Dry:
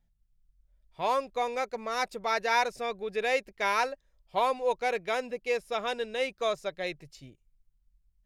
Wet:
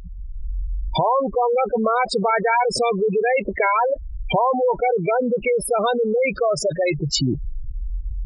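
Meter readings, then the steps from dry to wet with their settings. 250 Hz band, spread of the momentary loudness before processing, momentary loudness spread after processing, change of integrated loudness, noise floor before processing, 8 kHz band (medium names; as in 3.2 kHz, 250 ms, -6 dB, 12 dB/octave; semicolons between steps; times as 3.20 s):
+18.0 dB, 7 LU, 13 LU, +10.0 dB, -72 dBFS, +13.5 dB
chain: recorder AGC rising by 60 dB/s; spectral gate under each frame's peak -10 dB strong; high-pass 160 Hz 6 dB/octave; level flattener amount 70%; trim +7.5 dB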